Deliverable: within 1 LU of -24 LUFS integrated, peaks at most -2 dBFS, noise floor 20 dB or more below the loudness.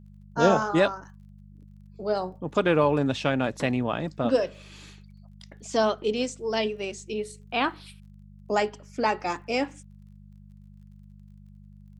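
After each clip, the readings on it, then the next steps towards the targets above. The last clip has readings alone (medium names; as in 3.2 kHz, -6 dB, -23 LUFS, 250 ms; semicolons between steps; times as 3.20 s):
tick rate 27 per s; hum 50 Hz; highest harmonic 200 Hz; hum level -47 dBFS; loudness -26.5 LUFS; peak level -6.0 dBFS; loudness target -24.0 LUFS
-> de-click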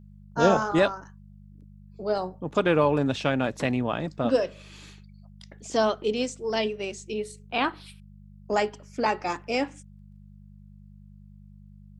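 tick rate 0 per s; hum 50 Hz; highest harmonic 200 Hz; hum level -47 dBFS
-> de-hum 50 Hz, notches 4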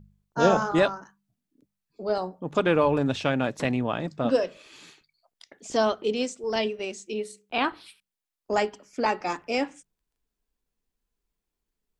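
hum not found; loudness -26.5 LUFS; peak level -5.5 dBFS; loudness target -24.0 LUFS
-> trim +2.5 dB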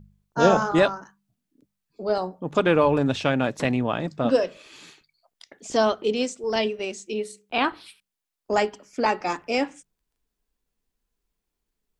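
loudness -24.0 LUFS; peak level -3.0 dBFS; noise floor -83 dBFS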